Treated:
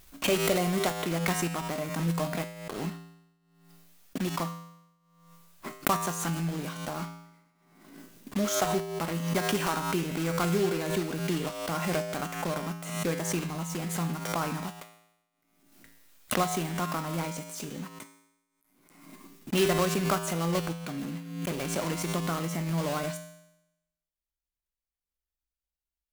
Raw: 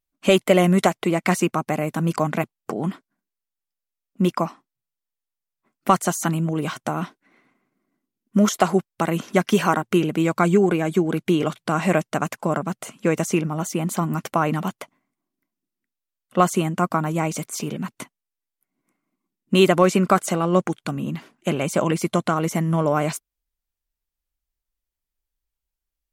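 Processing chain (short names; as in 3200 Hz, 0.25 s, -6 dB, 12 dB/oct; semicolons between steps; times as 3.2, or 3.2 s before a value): block floating point 3-bit; resonator 56 Hz, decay 0.86 s, harmonics odd, mix 80%; backwards sustainer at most 53 dB/s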